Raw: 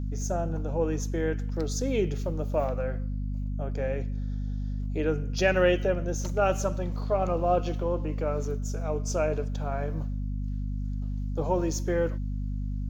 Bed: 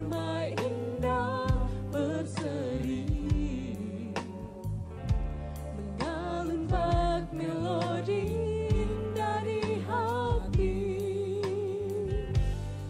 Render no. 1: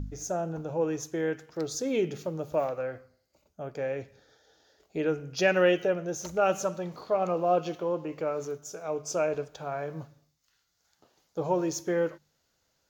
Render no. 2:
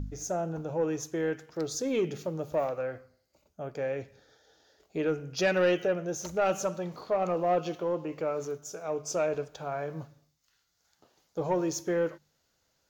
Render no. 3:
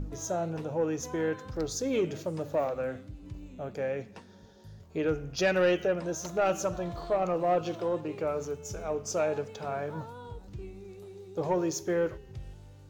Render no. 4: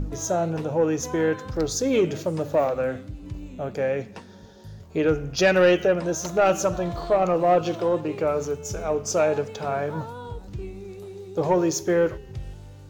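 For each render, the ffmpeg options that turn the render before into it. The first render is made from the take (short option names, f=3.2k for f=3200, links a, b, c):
-af "bandreject=f=50:t=h:w=4,bandreject=f=100:t=h:w=4,bandreject=f=150:t=h:w=4,bandreject=f=200:t=h:w=4,bandreject=f=250:t=h:w=4"
-af "asoftclip=type=tanh:threshold=-18dB"
-filter_complex "[1:a]volume=-14.5dB[a];[0:a][a]amix=inputs=2:normalize=0"
-af "volume=7.5dB"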